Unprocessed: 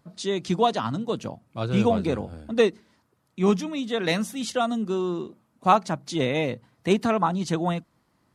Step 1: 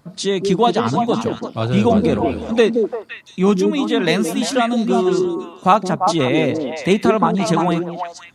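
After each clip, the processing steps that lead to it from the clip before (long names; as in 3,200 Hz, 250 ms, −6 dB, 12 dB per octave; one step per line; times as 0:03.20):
in parallel at 0 dB: downward compressor, threshold −28 dBFS, peak gain reduction 14.5 dB
on the sum: echo through a band-pass that steps 172 ms, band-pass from 310 Hz, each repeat 1.4 octaves, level 0 dB
level +3.5 dB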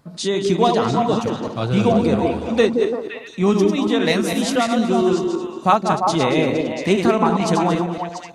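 feedback delay that plays each chunk backwards 114 ms, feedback 44%, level −6 dB
level −2 dB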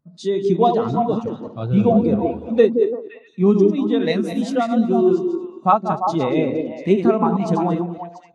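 every bin expanded away from the loudest bin 1.5 to 1
level −1 dB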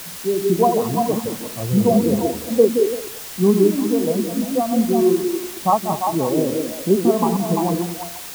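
elliptic low-pass filter 1,100 Hz
background noise white −34 dBFS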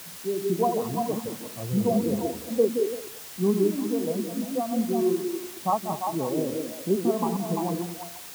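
high-pass filter 61 Hz
level −8 dB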